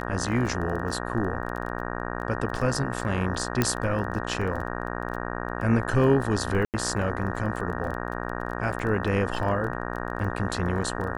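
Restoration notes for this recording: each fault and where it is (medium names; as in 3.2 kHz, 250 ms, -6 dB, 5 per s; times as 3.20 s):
buzz 60 Hz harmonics 31 -32 dBFS
crackle 16 per s -32 dBFS
3.62 s: pop -8 dBFS
6.65–6.74 s: dropout 88 ms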